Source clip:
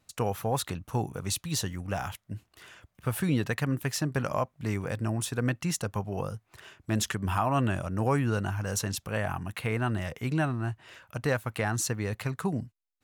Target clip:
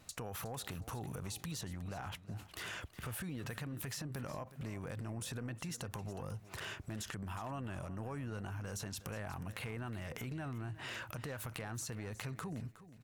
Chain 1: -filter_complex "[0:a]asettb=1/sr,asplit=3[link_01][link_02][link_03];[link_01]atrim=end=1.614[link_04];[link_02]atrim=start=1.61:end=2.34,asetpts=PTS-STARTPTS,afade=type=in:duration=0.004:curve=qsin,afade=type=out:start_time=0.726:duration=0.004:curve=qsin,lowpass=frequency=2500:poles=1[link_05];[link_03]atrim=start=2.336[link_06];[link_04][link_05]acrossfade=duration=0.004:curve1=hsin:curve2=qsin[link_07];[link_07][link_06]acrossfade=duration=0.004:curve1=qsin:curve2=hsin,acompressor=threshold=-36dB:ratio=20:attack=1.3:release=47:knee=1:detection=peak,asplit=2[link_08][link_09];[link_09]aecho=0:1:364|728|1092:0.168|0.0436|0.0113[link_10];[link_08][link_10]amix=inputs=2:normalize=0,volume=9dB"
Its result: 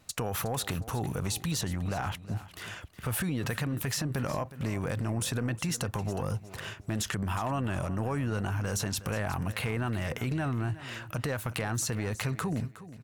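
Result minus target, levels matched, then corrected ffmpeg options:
downward compressor: peak gain reduction −11.5 dB
-filter_complex "[0:a]asettb=1/sr,asplit=3[link_01][link_02][link_03];[link_01]atrim=end=1.614[link_04];[link_02]atrim=start=1.61:end=2.34,asetpts=PTS-STARTPTS,afade=type=in:duration=0.004:curve=qsin,afade=type=out:start_time=0.726:duration=0.004:curve=qsin,lowpass=frequency=2500:poles=1[link_05];[link_03]atrim=start=2.336[link_06];[link_04][link_05]acrossfade=duration=0.004:curve1=hsin:curve2=qsin[link_07];[link_07][link_06]acrossfade=duration=0.004:curve1=qsin:curve2=hsin,acompressor=threshold=-48dB:ratio=20:attack=1.3:release=47:knee=1:detection=peak,asplit=2[link_08][link_09];[link_09]aecho=0:1:364|728|1092:0.168|0.0436|0.0113[link_10];[link_08][link_10]amix=inputs=2:normalize=0,volume=9dB"

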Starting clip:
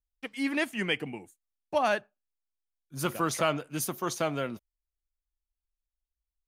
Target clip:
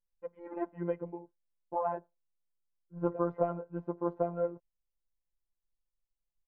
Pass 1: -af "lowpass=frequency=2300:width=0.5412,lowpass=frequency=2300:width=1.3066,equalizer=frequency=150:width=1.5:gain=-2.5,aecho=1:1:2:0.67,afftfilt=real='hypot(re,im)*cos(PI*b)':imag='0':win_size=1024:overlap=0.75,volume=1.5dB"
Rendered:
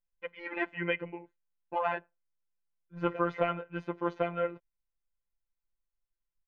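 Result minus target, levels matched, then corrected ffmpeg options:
2,000 Hz band +17.5 dB
-af "lowpass=frequency=970:width=0.5412,lowpass=frequency=970:width=1.3066,equalizer=frequency=150:width=1.5:gain=-2.5,aecho=1:1:2:0.67,afftfilt=real='hypot(re,im)*cos(PI*b)':imag='0':win_size=1024:overlap=0.75,volume=1.5dB"

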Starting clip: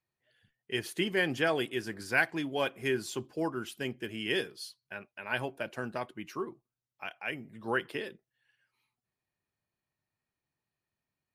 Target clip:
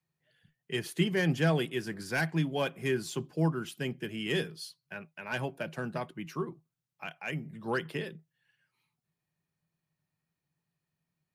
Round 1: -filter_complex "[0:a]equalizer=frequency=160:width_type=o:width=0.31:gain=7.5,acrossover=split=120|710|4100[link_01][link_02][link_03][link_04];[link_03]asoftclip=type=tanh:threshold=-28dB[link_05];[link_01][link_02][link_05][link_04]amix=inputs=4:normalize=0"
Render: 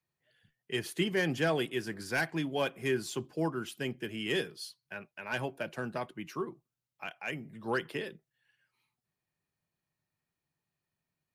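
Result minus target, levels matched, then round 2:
125 Hz band −5.5 dB
-filter_complex "[0:a]equalizer=frequency=160:width_type=o:width=0.31:gain=18,acrossover=split=120|710|4100[link_01][link_02][link_03][link_04];[link_03]asoftclip=type=tanh:threshold=-28dB[link_05];[link_01][link_02][link_05][link_04]amix=inputs=4:normalize=0"

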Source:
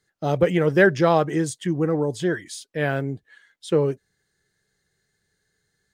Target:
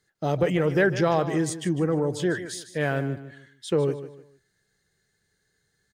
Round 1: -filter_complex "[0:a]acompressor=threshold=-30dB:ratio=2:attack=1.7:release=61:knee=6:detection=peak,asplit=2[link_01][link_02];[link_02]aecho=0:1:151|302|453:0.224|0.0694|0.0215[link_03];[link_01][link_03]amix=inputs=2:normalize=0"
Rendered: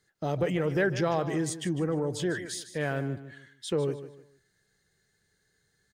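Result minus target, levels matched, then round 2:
downward compressor: peak gain reduction +5 dB
-filter_complex "[0:a]acompressor=threshold=-19.5dB:ratio=2:attack=1.7:release=61:knee=6:detection=peak,asplit=2[link_01][link_02];[link_02]aecho=0:1:151|302|453:0.224|0.0694|0.0215[link_03];[link_01][link_03]amix=inputs=2:normalize=0"

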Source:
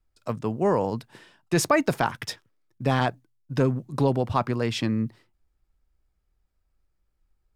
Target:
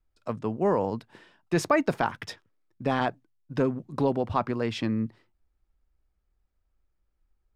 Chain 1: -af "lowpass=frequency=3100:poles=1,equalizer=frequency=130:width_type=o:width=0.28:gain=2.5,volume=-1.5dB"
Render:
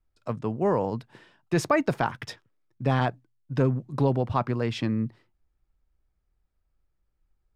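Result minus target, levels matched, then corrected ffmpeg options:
125 Hz band +5.5 dB
-af "lowpass=frequency=3100:poles=1,equalizer=frequency=130:width_type=o:width=0.28:gain=-8.5,volume=-1.5dB"

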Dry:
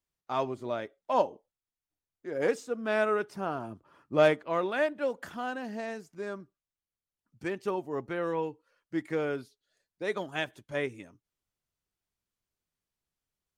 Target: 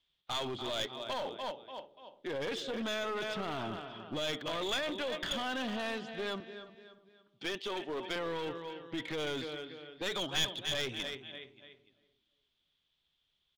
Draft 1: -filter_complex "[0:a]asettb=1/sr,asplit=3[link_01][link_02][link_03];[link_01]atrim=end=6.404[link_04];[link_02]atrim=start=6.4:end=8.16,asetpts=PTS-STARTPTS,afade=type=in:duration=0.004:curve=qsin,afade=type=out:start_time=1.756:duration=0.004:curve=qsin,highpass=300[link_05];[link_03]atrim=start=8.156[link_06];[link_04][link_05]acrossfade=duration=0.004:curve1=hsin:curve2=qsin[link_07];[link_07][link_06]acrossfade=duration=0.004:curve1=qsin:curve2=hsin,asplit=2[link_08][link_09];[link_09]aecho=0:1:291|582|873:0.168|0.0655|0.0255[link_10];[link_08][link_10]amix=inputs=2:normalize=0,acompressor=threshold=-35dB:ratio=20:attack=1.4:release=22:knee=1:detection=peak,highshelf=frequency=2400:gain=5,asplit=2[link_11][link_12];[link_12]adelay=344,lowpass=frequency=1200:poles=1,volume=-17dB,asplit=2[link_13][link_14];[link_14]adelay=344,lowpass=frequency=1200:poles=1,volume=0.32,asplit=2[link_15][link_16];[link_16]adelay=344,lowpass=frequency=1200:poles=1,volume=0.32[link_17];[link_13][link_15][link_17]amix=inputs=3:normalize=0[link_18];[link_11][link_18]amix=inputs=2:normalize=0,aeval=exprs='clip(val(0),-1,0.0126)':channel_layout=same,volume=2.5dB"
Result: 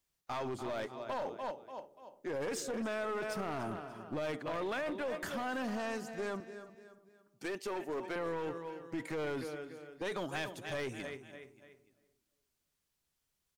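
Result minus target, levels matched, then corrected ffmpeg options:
4,000 Hz band −11.0 dB
-filter_complex "[0:a]asettb=1/sr,asplit=3[link_01][link_02][link_03];[link_01]atrim=end=6.404[link_04];[link_02]atrim=start=6.4:end=8.16,asetpts=PTS-STARTPTS,afade=type=in:duration=0.004:curve=qsin,afade=type=out:start_time=1.756:duration=0.004:curve=qsin,highpass=300[link_05];[link_03]atrim=start=8.156[link_06];[link_04][link_05]acrossfade=duration=0.004:curve1=hsin:curve2=qsin[link_07];[link_07][link_06]acrossfade=duration=0.004:curve1=qsin:curve2=hsin,asplit=2[link_08][link_09];[link_09]aecho=0:1:291|582|873:0.168|0.0655|0.0255[link_10];[link_08][link_10]amix=inputs=2:normalize=0,acompressor=threshold=-35dB:ratio=20:attack=1.4:release=22:knee=1:detection=peak,lowpass=frequency=3400:width_type=q:width=9,highshelf=frequency=2400:gain=5,asplit=2[link_11][link_12];[link_12]adelay=344,lowpass=frequency=1200:poles=1,volume=-17dB,asplit=2[link_13][link_14];[link_14]adelay=344,lowpass=frequency=1200:poles=1,volume=0.32,asplit=2[link_15][link_16];[link_16]adelay=344,lowpass=frequency=1200:poles=1,volume=0.32[link_17];[link_13][link_15][link_17]amix=inputs=3:normalize=0[link_18];[link_11][link_18]amix=inputs=2:normalize=0,aeval=exprs='clip(val(0),-1,0.0126)':channel_layout=same,volume=2.5dB"

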